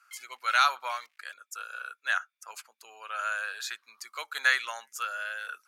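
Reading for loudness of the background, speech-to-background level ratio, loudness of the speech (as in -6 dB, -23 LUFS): -49.5 LUFS, 19.5 dB, -30.0 LUFS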